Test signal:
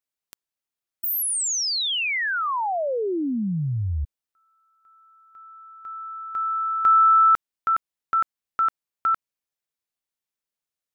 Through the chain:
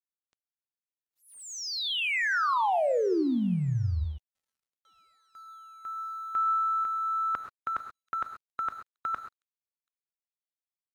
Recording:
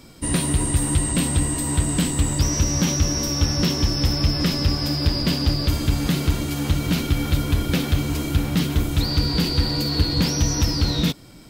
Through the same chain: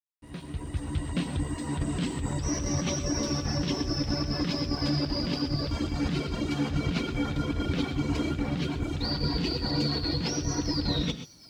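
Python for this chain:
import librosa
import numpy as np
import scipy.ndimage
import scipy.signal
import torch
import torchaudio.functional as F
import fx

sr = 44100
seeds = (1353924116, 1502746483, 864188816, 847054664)

p1 = fx.fade_in_head(x, sr, length_s=2.7)
p2 = fx.dereverb_blind(p1, sr, rt60_s=1.1)
p3 = fx.over_compress(p2, sr, threshold_db=-25.0, ratio=-1.0)
p4 = scipy.signal.sosfilt(scipy.signal.butter(2, 42.0, 'highpass', fs=sr, output='sos'), p3)
p5 = fx.air_absorb(p4, sr, metres=130.0)
p6 = p5 + fx.echo_wet_highpass(p5, sr, ms=734, feedback_pct=47, hz=4900.0, wet_db=-13, dry=0)
p7 = fx.rev_gated(p6, sr, seeds[0], gate_ms=150, shape='rising', drr_db=8.5)
p8 = np.sign(p7) * np.maximum(np.abs(p7) - 10.0 ** (-56.5 / 20.0), 0.0)
y = F.gain(torch.from_numpy(p8), -2.0).numpy()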